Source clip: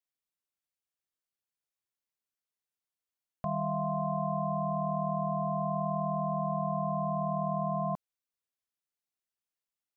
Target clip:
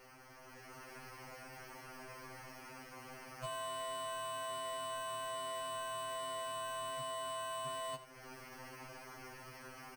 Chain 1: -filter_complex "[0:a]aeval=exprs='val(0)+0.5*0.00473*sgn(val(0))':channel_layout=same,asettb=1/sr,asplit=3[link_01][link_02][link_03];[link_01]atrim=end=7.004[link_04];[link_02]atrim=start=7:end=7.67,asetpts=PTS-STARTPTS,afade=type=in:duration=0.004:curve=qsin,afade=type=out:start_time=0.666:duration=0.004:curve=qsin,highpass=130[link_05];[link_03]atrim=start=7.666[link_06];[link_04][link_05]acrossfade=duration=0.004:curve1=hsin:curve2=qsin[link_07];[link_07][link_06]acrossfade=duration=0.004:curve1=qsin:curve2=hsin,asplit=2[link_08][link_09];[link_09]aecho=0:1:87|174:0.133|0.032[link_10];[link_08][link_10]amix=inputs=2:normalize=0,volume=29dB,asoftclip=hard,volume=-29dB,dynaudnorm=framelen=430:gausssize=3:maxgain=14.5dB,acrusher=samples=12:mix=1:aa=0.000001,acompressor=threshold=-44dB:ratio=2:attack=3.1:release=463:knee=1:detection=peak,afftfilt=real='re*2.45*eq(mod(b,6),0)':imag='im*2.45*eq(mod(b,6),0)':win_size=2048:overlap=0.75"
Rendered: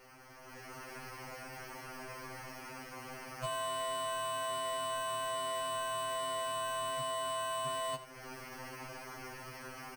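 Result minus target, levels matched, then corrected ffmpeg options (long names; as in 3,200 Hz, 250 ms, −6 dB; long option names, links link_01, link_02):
downward compressor: peak gain reduction −5 dB
-filter_complex "[0:a]aeval=exprs='val(0)+0.5*0.00473*sgn(val(0))':channel_layout=same,asettb=1/sr,asplit=3[link_01][link_02][link_03];[link_01]atrim=end=7.004[link_04];[link_02]atrim=start=7:end=7.67,asetpts=PTS-STARTPTS,afade=type=in:duration=0.004:curve=qsin,afade=type=out:start_time=0.666:duration=0.004:curve=qsin,highpass=130[link_05];[link_03]atrim=start=7.666[link_06];[link_04][link_05]acrossfade=duration=0.004:curve1=hsin:curve2=qsin[link_07];[link_07][link_06]acrossfade=duration=0.004:curve1=qsin:curve2=hsin,asplit=2[link_08][link_09];[link_09]aecho=0:1:87|174:0.133|0.032[link_10];[link_08][link_10]amix=inputs=2:normalize=0,volume=29dB,asoftclip=hard,volume=-29dB,dynaudnorm=framelen=430:gausssize=3:maxgain=14.5dB,acrusher=samples=12:mix=1:aa=0.000001,acompressor=threshold=-54dB:ratio=2:attack=3.1:release=463:knee=1:detection=peak,afftfilt=real='re*2.45*eq(mod(b,6),0)':imag='im*2.45*eq(mod(b,6),0)':win_size=2048:overlap=0.75"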